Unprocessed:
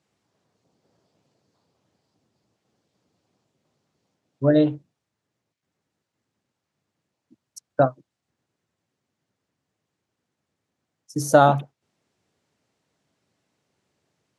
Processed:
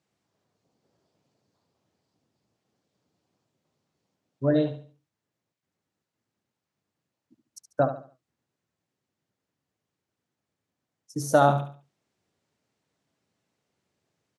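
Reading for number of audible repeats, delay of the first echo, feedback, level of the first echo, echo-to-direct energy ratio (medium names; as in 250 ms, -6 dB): 3, 71 ms, 32%, -10.0 dB, -9.5 dB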